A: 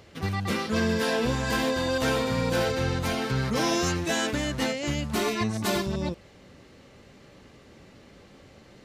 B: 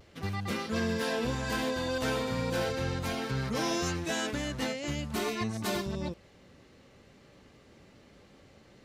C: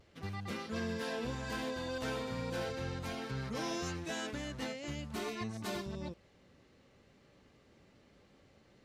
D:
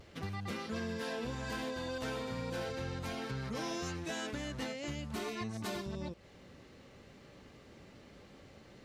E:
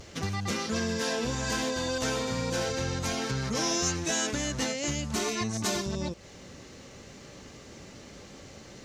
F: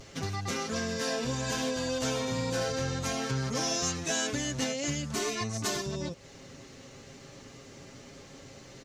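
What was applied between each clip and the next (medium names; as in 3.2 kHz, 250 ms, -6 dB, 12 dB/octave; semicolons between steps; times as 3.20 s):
vibrato 0.41 Hz 20 cents; trim -5.5 dB
treble shelf 11 kHz -6.5 dB; trim -7 dB
compression 2.5:1, threshold -48 dBFS, peak gain reduction 9.5 dB; trim +8 dB
peaking EQ 6.4 kHz +12 dB 0.8 oct; trim +8 dB
comb 7.4 ms, depth 50%; trim -2.5 dB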